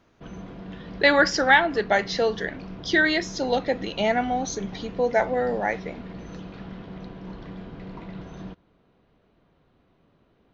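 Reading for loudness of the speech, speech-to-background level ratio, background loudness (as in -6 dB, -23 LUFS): -23.0 LUFS, 16.5 dB, -39.5 LUFS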